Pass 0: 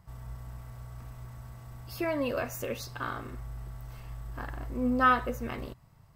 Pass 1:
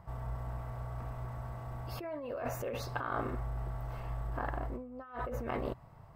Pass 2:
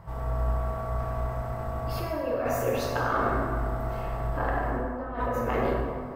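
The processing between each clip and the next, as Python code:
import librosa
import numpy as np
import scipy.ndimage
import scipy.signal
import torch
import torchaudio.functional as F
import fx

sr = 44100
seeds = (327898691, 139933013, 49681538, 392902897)

y1 = fx.over_compress(x, sr, threshold_db=-39.0, ratio=-1.0)
y1 = fx.curve_eq(y1, sr, hz=(210.0, 710.0, 6100.0), db=(0, 8, -10))
y1 = y1 * librosa.db_to_amplitude(-1.5)
y2 = fx.rev_plate(y1, sr, seeds[0], rt60_s=2.1, hf_ratio=0.5, predelay_ms=0, drr_db=-3.0)
y2 = y2 * librosa.db_to_amplitude(5.5)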